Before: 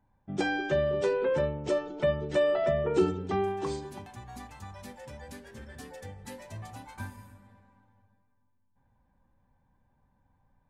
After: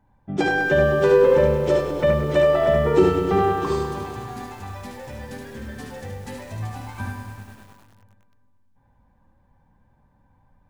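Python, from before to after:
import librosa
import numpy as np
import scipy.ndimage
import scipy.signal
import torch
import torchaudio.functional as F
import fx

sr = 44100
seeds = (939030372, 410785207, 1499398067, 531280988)

y = fx.high_shelf(x, sr, hz=4900.0, db=-7.5)
y = fx.room_early_taps(y, sr, ms=(55, 73), db=(-11.0, -4.5))
y = fx.echo_crushed(y, sr, ms=101, feedback_pct=80, bits=9, wet_db=-9)
y = y * 10.0 ** (7.5 / 20.0)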